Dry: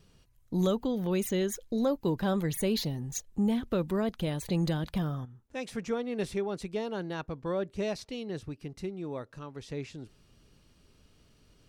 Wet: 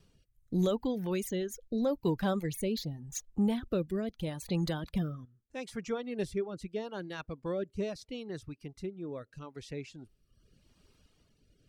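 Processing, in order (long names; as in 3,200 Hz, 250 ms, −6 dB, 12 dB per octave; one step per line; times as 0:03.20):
rotating-speaker cabinet horn 0.8 Hz
reverb reduction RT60 1 s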